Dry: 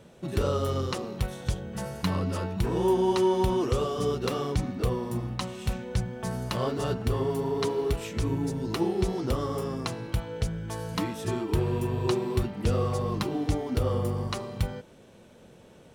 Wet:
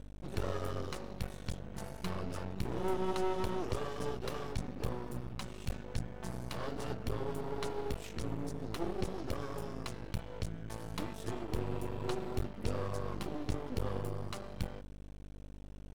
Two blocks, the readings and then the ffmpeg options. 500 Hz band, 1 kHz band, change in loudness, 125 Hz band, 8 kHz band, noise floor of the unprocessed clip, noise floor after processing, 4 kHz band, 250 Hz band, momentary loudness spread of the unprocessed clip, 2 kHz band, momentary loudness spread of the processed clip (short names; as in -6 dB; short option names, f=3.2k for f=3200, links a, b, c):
-11.0 dB, -9.0 dB, -10.5 dB, -11.0 dB, -9.0 dB, -53 dBFS, -48 dBFS, -10.0 dB, -11.0 dB, 8 LU, -7.5 dB, 7 LU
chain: -af "aeval=exprs='val(0)+0.0126*(sin(2*PI*50*n/s)+sin(2*PI*2*50*n/s)/2+sin(2*PI*3*50*n/s)/3+sin(2*PI*4*50*n/s)/4+sin(2*PI*5*50*n/s)/5)':c=same,aeval=exprs='max(val(0),0)':c=same,volume=-6dB"